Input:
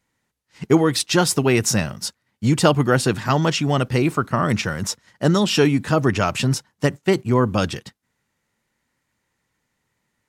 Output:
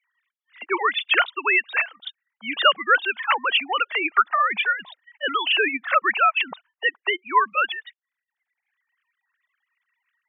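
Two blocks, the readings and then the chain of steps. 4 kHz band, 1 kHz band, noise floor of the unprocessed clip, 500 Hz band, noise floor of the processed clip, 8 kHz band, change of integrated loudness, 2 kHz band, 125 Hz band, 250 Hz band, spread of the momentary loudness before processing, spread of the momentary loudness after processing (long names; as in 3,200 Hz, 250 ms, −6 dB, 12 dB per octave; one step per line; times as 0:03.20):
+1.5 dB, +3.5 dB, −75 dBFS, −9.5 dB, below −85 dBFS, below −40 dB, −1.5 dB, +6.5 dB, below −40 dB, −18.5 dB, 9 LU, 10 LU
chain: three sine waves on the formant tracks
reverb reduction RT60 1.1 s
high-pass filter 1,400 Hz 12 dB per octave
level +8 dB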